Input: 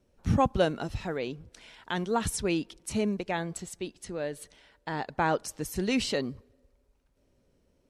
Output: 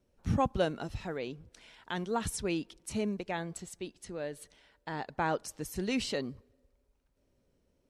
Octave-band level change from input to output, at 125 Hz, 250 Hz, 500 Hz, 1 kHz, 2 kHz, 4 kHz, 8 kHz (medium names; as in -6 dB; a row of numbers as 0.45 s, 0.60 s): -4.5 dB, -4.5 dB, -4.5 dB, -4.5 dB, -4.5 dB, -4.5 dB, -4.5 dB